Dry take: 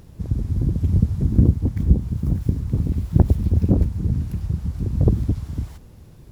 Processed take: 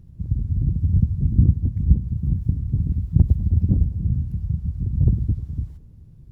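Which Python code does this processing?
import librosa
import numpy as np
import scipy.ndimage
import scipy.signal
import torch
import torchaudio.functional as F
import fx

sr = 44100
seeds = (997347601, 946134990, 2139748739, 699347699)

p1 = fx.curve_eq(x, sr, hz=(150.0, 450.0, 670.0), db=(0, -15, -18))
y = p1 + fx.echo_banded(p1, sr, ms=103, feedback_pct=77, hz=560.0, wet_db=-16.5, dry=0)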